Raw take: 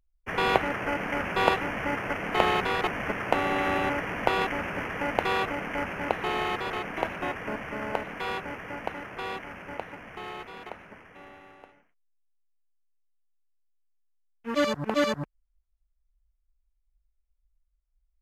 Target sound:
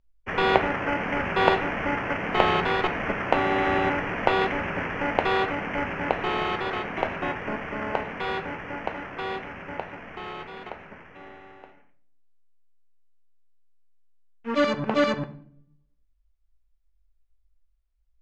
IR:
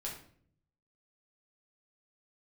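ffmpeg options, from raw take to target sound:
-filter_complex "[0:a]lowpass=5500,asplit=2[link_01][link_02];[1:a]atrim=start_sample=2205,lowpass=5300[link_03];[link_02][link_03]afir=irnorm=-1:irlink=0,volume=-4.5dB[link_04];[link_01][link_04]amix=inputs=2:normalize=0"

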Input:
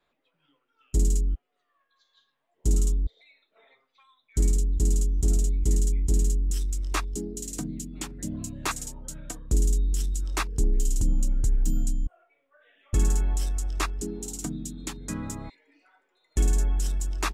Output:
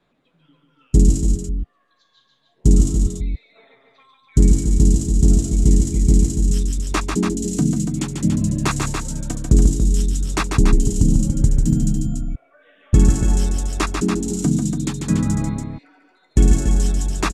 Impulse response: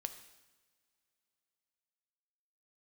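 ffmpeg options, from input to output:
-filter_complex "[0:a]lowpass=9800,equalizer=frequency=160:width=0.62:gain=12.5,asplit=2[link_01][link_02];[link_02]aecho=0:1:142.9|285.7:0.562|0.501[link_03];[link_01][link_03]amix=inputs=2:normalize=0,volume=5.5dB"

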